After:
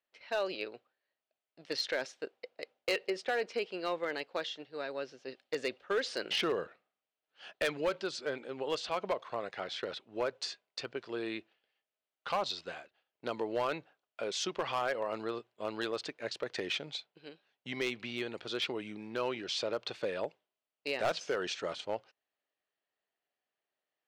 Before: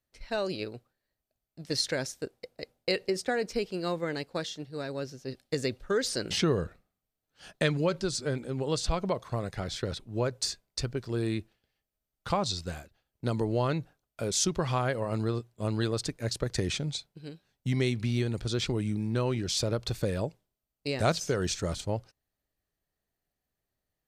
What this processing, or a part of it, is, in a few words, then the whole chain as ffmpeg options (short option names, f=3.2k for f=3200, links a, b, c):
megaphone: -af "highpass=470,lowpass=3.3k,equalizer=f=2.9k:t=o:w=0.53:g=5,asoftclip=type=hard:threshold=-25dB"